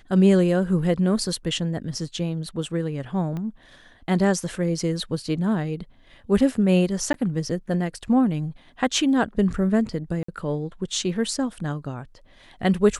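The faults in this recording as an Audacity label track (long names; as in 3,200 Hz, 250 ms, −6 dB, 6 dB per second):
3.370000	3.370000	click −21 dBFS
7.130000	7.140000	drop-out 12 ms
10.230000	10.280000	drop-out 54 ms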